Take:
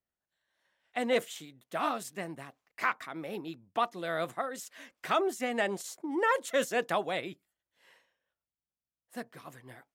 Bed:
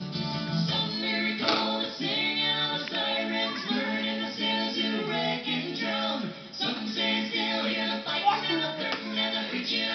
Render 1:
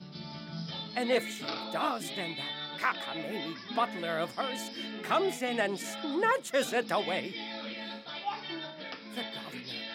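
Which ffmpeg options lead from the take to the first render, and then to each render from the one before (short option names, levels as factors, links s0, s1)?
-filter_complex "[1:a]volume=0.266[s0];[0:a][s0]amix=inputs=2:normalize=0"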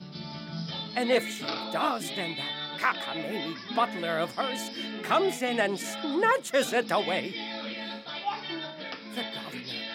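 -af "volume=1.5"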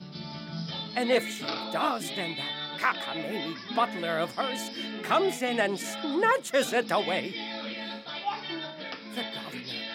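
-af anull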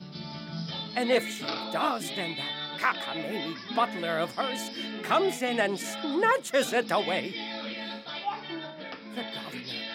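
-filter_complex "[0:a]asettb=1/sr,asplit=3[s0][s1][s2];[s0]atrim=end=8.264[s3];[s1]atrim=start=8.26:end=9.28,asetpts=PTS-STARTPTS,afade=t=in:d=0.004:c=qsin,afade=t=out:st=1.016:d=0.004:c=qsin,highshelf=f=3000:g=-8[s4];[s2]atrim=start=9.276[s5];[s3][s4]acrossfade=d=0.004:c1=hsin:c2=qsin[s6];[s6][s5]acrossfade=d=0.004:c1=qsin:c2=hsin"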